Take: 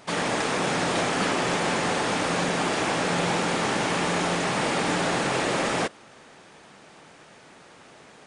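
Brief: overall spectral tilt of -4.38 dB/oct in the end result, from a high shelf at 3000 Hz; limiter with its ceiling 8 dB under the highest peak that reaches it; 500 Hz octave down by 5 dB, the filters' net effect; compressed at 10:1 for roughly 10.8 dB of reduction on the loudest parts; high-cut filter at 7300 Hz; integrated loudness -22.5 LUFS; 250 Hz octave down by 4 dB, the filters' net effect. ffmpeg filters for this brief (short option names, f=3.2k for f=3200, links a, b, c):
-af "lowpass=7.3k,equalizer=f=250:t=o:g=-4,equalizer=f=500:t=o:g=-5,highshelf=f=3k:g=-8.5,acompressor=threshold=-36dB:ratio=10,volume=21.5dB,alimiter=limit=-13dB:level=0:latency=1"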